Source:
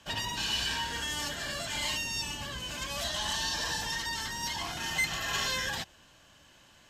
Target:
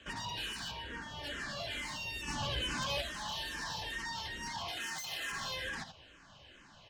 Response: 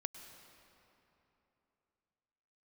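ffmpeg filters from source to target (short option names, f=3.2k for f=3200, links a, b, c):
-filter_complex "[0:a]lowpass=4.6k,asoftclip=type=tanh:threshold=-32.5dB,asettb=1/sr,asplit=3[a][b][c];[a]atrim=end=4.684[d];[b]atrim=start=4.68:end=5.32,asetpts=PTS-STARTPTS,afade=t=in:d=0.004:c=qsin,afade=t=out:st=0.636:d=0.004:c=qsin,aemphasis=mode=production:type=bsi[e];[c]atrim=start=5.316[f];[d][e]acrossfade=d=0.004:c1=hsin:c2=qsin[g];[g][f]acrossfade=d=0.004:c1=qsin:c2=hsin,aecho=1:1:80:0.251,acompressor=threshold=-42dB:ratio=2,asplit=3[h][i][j];[h]afade=t=out:st=0.7:d=0.02[k];[i]highshelf=f=2.6k:g=-11,afade=t=in:st=0.7:d=0.02,afade=t=out:st=1.23:d=0.02[l];[j]afade=t=in:st=1.23:d=0.02[m];[k][l][m]amix=inputs=3:normalize=0,asplit=3[n][o][p];[n]afade=t=out:st=2.27:d=0.02[q];[o]acontrast=77,afade=t=in:st=2.27:d=0.02,afade=t=out:st=3:d=0.02[r];[p]afade=t=in:st=3:d=0.02[s];[q][r][s]amix=inputs=3:normalize=0,aeval=exprs='0.0794*sin(PI/2*2.24*val(0)/0.0794)':c=same,asplit=2[t][u];[u]afreqshift=-2.3[v];[t][v]amix=inputs=2:normalize=1,volume=-6.5dB"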